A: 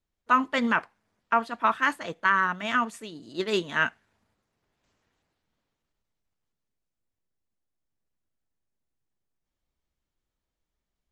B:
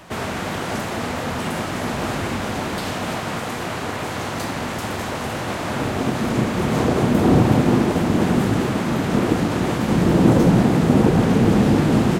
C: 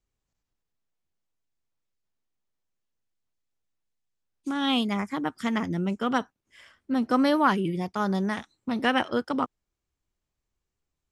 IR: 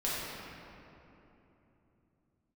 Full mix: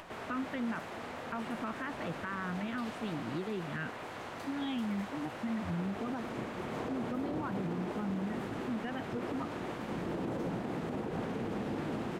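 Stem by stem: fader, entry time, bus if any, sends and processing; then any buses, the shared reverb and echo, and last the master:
+0.5 dB, 0.00 s, bus A, no send, rotating-speaker cabinet horn 0.85 Hz
−15.5 dB, 0.00 s, no bus, no send, bass and treble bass −8 dB, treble −8 dB
−4.0 dB, 0.00 s, bus A, no send, spectral dynamics exaggerated over time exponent 2
bus A: 0.0 dB, bass and treble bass +14 dB, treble −14 dB; downward compressor, threshold −32 dBFS, peak gain reduction 15.5 dB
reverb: not used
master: upward compression, threshold −41 dBFS; brickwall limiter −28 dBFS, peak gain reduction 9 dB

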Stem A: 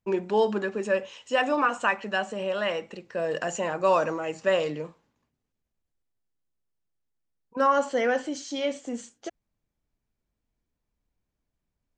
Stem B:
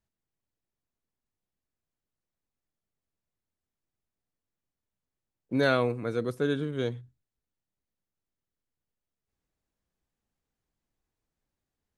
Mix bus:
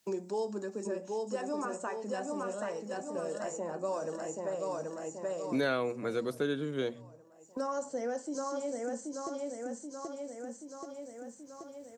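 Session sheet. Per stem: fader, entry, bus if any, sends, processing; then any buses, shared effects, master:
−4.0 dB, 0.00 s, no send, echo send −4 dB, noise gate −43 dBFS, range −12 dB; drawn EQ curve 300 Hz 0 dB, 860 Hz −4 dB, 3,100 Hz −19 dB, 5,100 Hz +1 dB, 7,800 Hz +7 dB; flanger 0.25 Hz, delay 1.1 ms, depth 6.9 ms, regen −78%; automatic ducking −7 dB, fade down 1.90 s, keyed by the second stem
+1.0 dB, 0.00 s, no send, no echo send, mains-hum notches 60/120/180/240 Hz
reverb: not used
echo: repeating echo 780 ms, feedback 43%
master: high-pass filter 150 Hz 12 dB per octave; multiband upward and downward compressor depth 70%

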